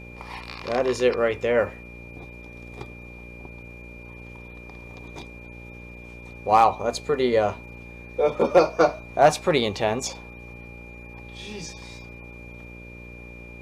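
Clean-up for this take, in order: clip repair -6 dBFS; de-hum 59.3 Hz, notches 10; band-stop 2.4 kHz, Q 30

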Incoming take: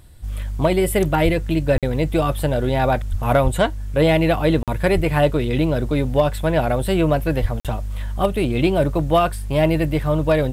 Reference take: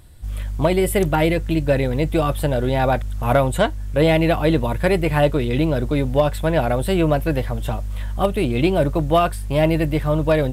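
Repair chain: de-plosive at 1.24/1.74/3.10/3.43/4.94/7.41 s; interpolate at 1.78/4.63/7.60 s, 47 ms

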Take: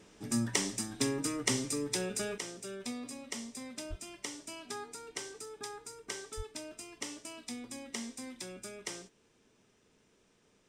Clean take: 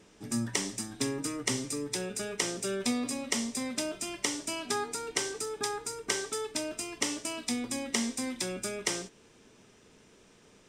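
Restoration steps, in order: clip repair -12.5 dBFS; 3.89–4.01 s: high-pass 140 Hz 24 dB/octave; 6.36–6.48 s: high-pass 140 Hz 24 dB/octave; trim 0 dB, from 2.38 s +10 dB

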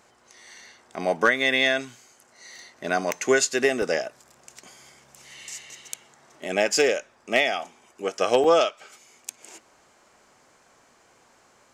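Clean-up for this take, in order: clip repair -8 dBFS; interpolate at 3.82/8.44 s, 2.4 ms

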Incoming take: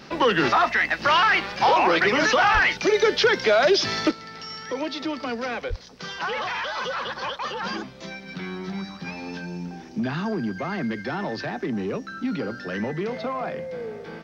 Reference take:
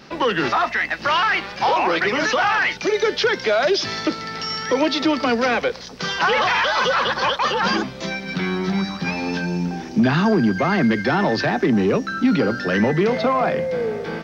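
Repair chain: clip repair -9 dBFS; de-plosive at 2.53/5.69 s; trim 0 dB, from 4.11 s +10 dB

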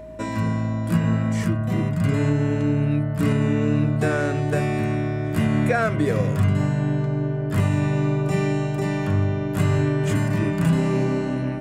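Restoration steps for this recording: de-hum 56.7 Hz, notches 7; band-stop 630 Hz, Q 30

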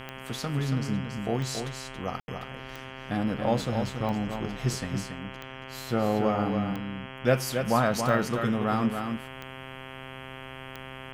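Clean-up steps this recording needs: de-click; de-hum 131.8 Hz, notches 25; room tone fill 2.20–2.28 s; inverse comb 278 ms -6.5 dB

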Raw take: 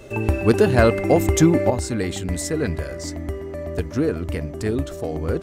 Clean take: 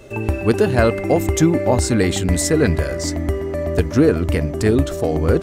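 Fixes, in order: clip repair -5 dBFS; gain correction +7.5 dB, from 1.70 s

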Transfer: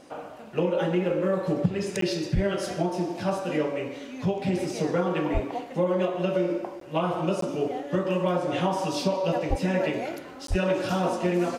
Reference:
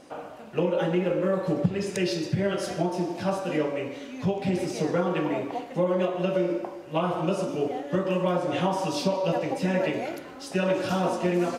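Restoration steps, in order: de-plosive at 2.34/5.33/9.49/10.49 s; interpolate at 2.01/6.80/7.41/10.47 s, 13 ms

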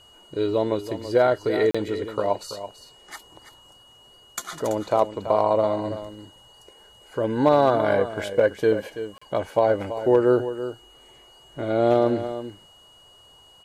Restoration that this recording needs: clip repair -8 dBFS; band-stop 2.9 kHz, Q 30; interpolate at 1.71/9.18 s, 35 ms; inverse comb 332 ms -11.5 dB

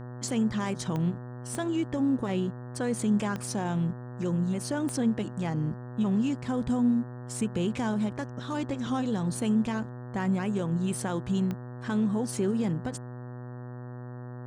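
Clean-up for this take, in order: de-click; de-hum 123.3 Hz, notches 15

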